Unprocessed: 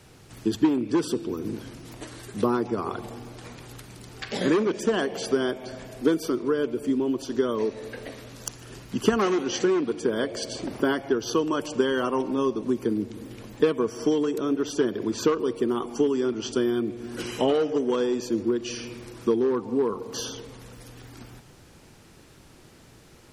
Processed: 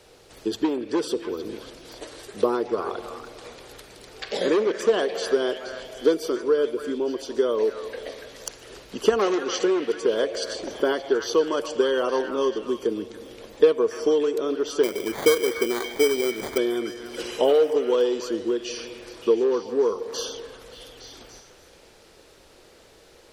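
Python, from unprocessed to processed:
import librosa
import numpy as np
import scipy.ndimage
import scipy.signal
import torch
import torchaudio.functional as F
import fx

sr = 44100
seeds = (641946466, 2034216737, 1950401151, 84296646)

y = fx.graphic_eq_10(x, sr, hz=(125, 250, 500, 4000), db=(-11, -5, 10, 5))
y = fx.sample_hold(y, sr, seeds[0], rate_hz=2700.0, jitter_pct=0, at=(14.83, 16.58))
y = fx.echo_stepped(y, sr, ms=288, hz=1600.0, octaves=0.7, feedback_pct=70, wet_db=-5)
y = F.gain(torch.from_numpy(y), -2.0).numpy()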